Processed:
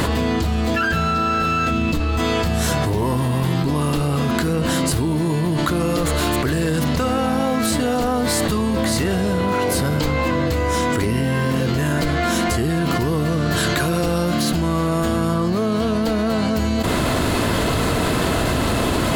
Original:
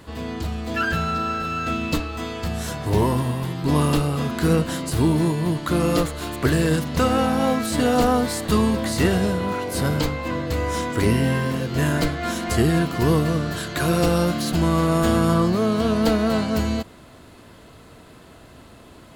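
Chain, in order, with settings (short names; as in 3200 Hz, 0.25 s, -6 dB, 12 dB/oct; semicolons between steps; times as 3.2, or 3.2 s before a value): 1.71–2.19 low shelf 210 Hz +7.5 dB; fast leveller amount 100%; gain -4 dB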